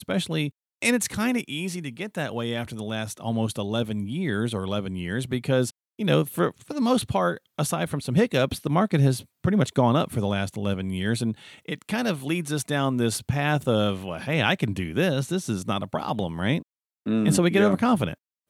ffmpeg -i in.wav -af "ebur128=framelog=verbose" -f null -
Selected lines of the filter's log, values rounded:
Integrated loudness:
  I:         -25.5 LUFS
  Threshold: -35.5 LUFS
Loudness range:
  LRA:         4.6 LU
  Threshold: -45.7 LUFS
  LRA low:   -28.5 LUFS
  LRA high:  -23.8 LUFS